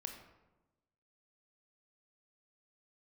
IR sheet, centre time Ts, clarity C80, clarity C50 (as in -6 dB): 27 ms, 8.5 dB, 6.0 dB